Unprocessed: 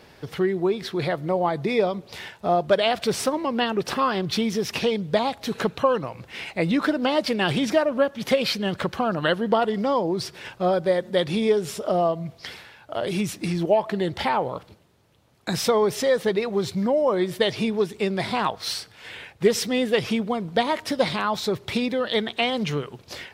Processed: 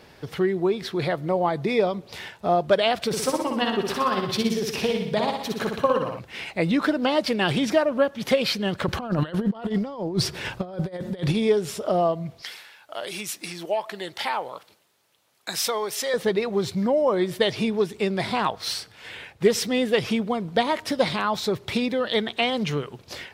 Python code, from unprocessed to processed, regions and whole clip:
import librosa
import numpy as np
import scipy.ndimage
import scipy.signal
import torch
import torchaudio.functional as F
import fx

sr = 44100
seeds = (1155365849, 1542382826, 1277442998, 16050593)

y = fx.chain(x, sr, fx.high_shelf(hz=9100.0, db=3.5),
    fx.tremolo(hz=18.0, depth=0.52),
    fx.room_flutter(wall_m=10.5, rt60_s=0.77), at=(3.07, 6.19))
y = fx.chain(y, sr, fx.over_compress(threshold_db=-28.0, ratio=-0.5),
    fx.low_shelf(hz=180.0, db=8.0), at=(8.88, 11.35))
y = fx.chain(y, sr, fx.highpass(hz=1100.0, slope=6),
    fx.high_shelf(hz=7100.0, db=6.5), at=(12.42, 16.14))